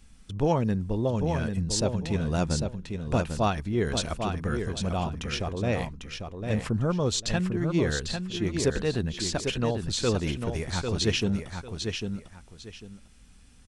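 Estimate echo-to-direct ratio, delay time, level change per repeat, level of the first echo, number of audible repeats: −6.0 dB, 798 ms, −12.5 dB, −6.0 dB, 2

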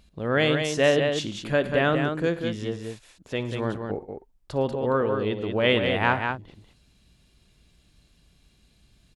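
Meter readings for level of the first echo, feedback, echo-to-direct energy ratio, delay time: −16.5 dB, repeats not evenly spaced, −5.0 dB, 59 ms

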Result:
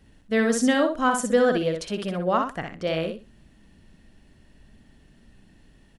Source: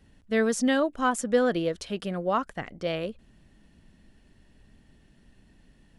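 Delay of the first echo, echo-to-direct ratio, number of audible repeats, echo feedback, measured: 62 ms, −5.5 dB, 3, 19%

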